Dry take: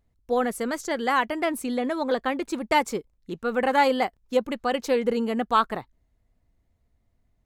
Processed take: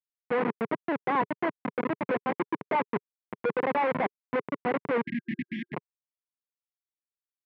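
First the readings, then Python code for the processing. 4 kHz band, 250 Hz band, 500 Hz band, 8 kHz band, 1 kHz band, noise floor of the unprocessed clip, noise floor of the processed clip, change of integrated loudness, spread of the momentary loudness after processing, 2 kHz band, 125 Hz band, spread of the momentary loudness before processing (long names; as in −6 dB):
−14.0 dB, −4.0 dB, −5.0 dB, below −35 dB, −5.5 dB, −70 dBFS, below −85 dBFS, −5.0 dB, 8 LU, −4.5 dB, +4.0 dB, 8 LU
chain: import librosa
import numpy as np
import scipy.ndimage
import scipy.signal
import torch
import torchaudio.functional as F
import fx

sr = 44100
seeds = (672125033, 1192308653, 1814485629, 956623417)

y = fx.schmitt(x, sr, flips_db=-23.0)
y = fx.cabinet(y, sr, low_hz=160.0, low_slope=24, high_hz=2300.0, hz=(420.0, 1000.0, 2100.0), db=(5, 7, 5))
y = fx.spec_erase(y, sr, start_s=5.06, length_s=0.68, low_hz=350.0, high_hz=1600.0)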